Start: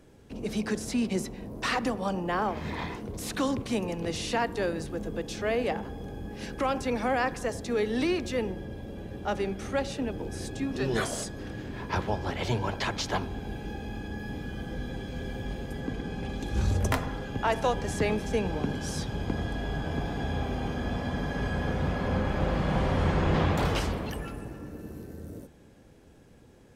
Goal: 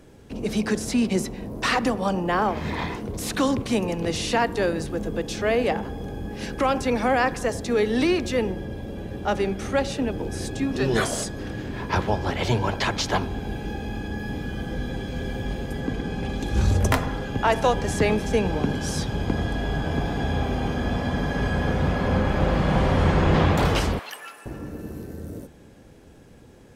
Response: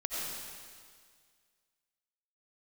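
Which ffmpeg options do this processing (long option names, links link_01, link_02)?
-filter_complex "[0:a]asettb=1/sr,asplit=3[link_01][link_02][link_03];[link_01]atrim=end=23.994[link_04];[link_02]atrim=start=23.99:end=24.46,asetpts=PTS-STARTPTS,afade=type=in:duration=0.004:curve=qsin,afade=type=out:start_time=0.466:duration=0.004:curve=qsin,highpass=1100[link_05];[link_03]atrim=start=24.456[link_06];[link_04][link_05]acrossfade=duration=0.004:curve1=hsin:curve2=qsin[link_07];[link_07][link_06]acrossfade=duration=0.004:curve1=qsin:curve2=hsin,volume=6dB"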